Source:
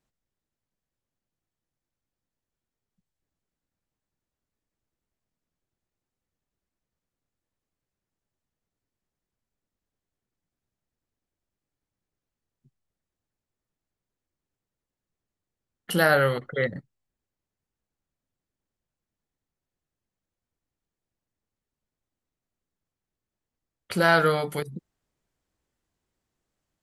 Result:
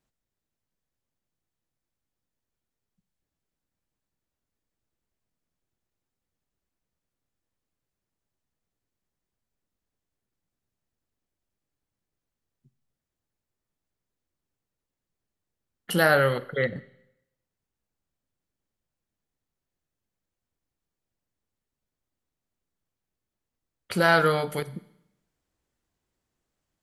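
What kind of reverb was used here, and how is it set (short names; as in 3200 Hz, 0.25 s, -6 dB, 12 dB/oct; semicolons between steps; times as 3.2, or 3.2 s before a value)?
Schroeder reverb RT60 0.82 s, combs from 31 ms, DRR 17 dB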